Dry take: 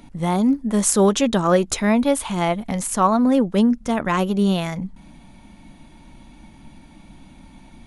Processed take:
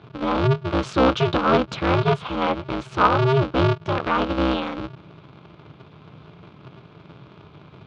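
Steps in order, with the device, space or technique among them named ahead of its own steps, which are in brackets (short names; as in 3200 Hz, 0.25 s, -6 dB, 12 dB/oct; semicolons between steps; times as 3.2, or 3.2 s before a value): ring modulator pedal into a guitar cabinet (polarity switched at an audio rate 130 Hz; speaker cabinet 100–3800 Hz, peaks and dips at 160 Hz +3 dB, 360 Hz -4 dB, 750 Hz -4 dB, 1300 Hz +5 dB, 1900 Hz -9 dB)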